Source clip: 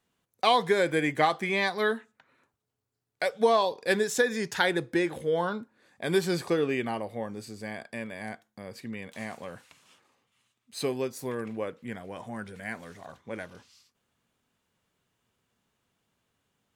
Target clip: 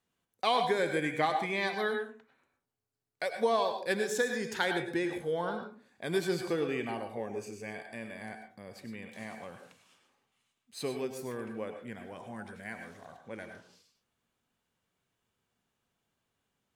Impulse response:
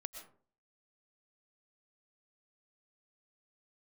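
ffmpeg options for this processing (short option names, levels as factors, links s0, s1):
-filter_complex "[0:a]asettb=1/sr,asplit=3[s0][s1][s2];[s0]atrim=end=7.174[s3];[s1]atrim=start=7.17:end=7.71,asetpts=PTS-STARTPTS,afade=t=in:d=0.004:c=qsin,afade=t=out:st=0.536:d=0.004:c=qsin,equalizer=f=400:t=o:w=0.33:g=12,equalizer=f=2500:t=o:w=0.33:g=12,equalizer=f=4000:t=o:w=0.33:g=-12,equalizer=f=6300:t=o:w=0.33:g=9[s4];[s2]atrim=start=7.706[s5];[s3][s4]acrossfade=d=0.004:c1=hsin:c2=qsin[s6];[s6][s5]acrossfade=d=0.004:c1=qsin:c2=hsin[s7];[1:a]atrim=start_sample=2205,asetrate=52920,aresample=44100[s8];[s7][s8]afir=irnorm=-1:irlink=0"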